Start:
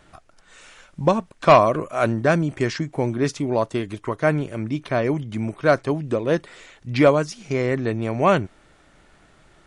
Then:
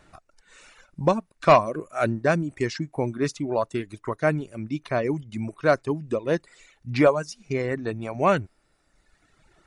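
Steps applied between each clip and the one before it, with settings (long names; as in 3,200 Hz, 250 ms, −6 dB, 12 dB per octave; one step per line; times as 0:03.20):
reverb reduction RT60 1.4 s
notch filter 3,200 Hz, Q 10
level −2.5 dB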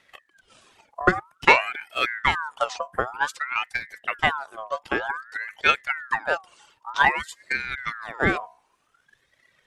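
transient designer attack +9 dB, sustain +5 dB
mains-hum notches 60/120/180 Hz
ring modulator whose carrier an LFO sweeps 1,400 Hz, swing 40%, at 0.53 Hz
level −3 dB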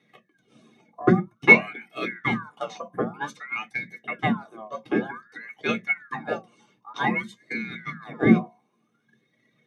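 convolution reverb RT60 0.20 s, pre-delay 3 ms, DRR −0.5 dB
level −13 dB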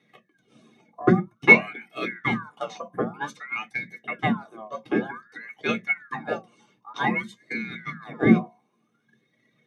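no processing that can be heard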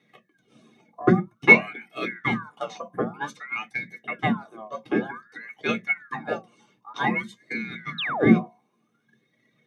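sound drawn into the spectrogram fall, 0:07.98–0:08.30, 240–4,100 Hz −28 dBFS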